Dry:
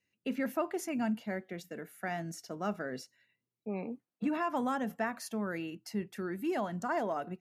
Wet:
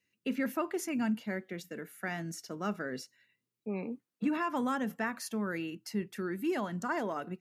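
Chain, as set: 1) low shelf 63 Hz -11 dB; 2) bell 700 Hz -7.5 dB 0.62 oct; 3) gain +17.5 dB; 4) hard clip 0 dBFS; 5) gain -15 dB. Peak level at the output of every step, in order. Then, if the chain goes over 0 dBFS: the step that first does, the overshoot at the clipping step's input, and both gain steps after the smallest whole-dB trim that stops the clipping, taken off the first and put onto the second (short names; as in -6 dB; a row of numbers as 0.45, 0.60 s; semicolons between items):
-20.0, -22.5, -5.0, -5.0, -20.0 dBFS; no overload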